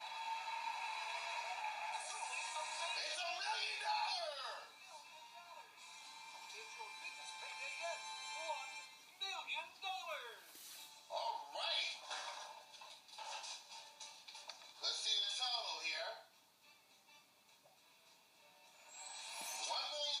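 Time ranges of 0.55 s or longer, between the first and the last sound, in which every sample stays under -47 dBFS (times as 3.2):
16.18–18.89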